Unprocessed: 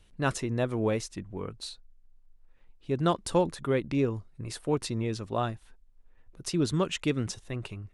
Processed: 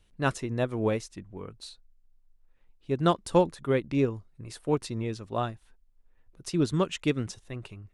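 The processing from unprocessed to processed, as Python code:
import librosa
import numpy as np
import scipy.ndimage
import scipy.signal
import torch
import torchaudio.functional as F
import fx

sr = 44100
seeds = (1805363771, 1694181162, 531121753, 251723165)

y = fx.upward_expand(x, sr, threshold_db=-36.0, expansion=1.5)
y = y * librosa.db_to_amplitude(3.5)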